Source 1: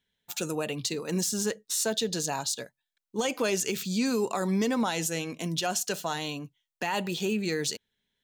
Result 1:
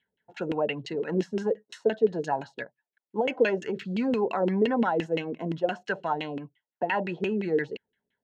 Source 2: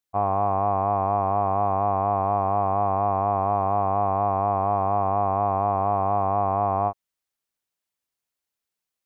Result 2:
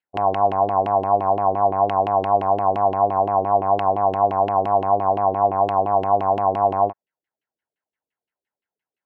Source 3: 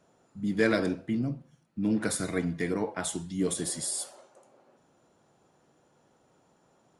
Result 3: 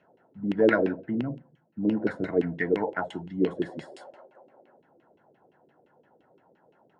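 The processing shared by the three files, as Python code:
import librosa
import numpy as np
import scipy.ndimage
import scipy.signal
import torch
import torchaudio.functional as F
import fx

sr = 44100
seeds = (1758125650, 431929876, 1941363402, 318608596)

y = fx.filter_lfo_lowpass(x, sr, shape='saw_down', hz=5.8, low_hz=320.0, high_hz=2800.0, q=3.6)
y = fx.notch_comb(y, sr, f0_hz=1200.0)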